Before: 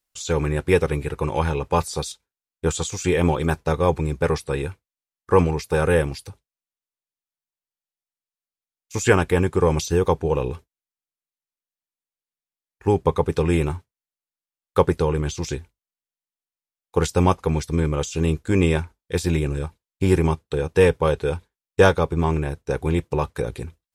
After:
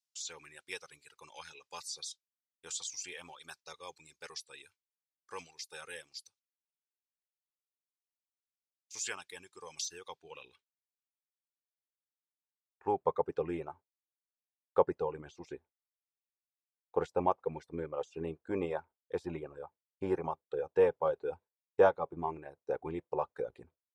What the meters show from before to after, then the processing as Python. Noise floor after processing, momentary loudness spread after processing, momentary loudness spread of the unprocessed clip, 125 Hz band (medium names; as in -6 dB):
under -85 dBFS, 19 LU, 11 LU, -28.0 dB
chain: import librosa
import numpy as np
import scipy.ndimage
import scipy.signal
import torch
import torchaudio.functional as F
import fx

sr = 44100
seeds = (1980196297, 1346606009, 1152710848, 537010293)

y = fx.filter_sweep_bandpass(x, sr, from_hz=5300.0, to_hz=670.0, start_s=9.84, end_s=13.22, q=1.5)
y = fx.dereverb_blind(y, sr, rt60_s=1.7)
y = y * 10.0 ** (-5.5 / 20.0)